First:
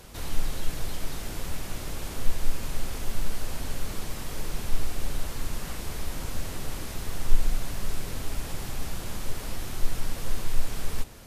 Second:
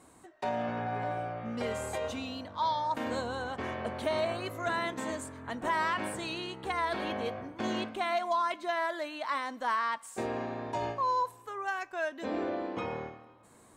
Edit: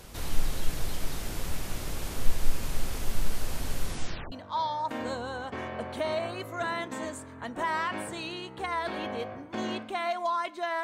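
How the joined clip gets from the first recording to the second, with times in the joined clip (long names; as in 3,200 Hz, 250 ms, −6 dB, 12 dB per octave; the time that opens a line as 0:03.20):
first
0:03.83: tape stop 0.49 s
0:04.32: continue with second from 0:02.38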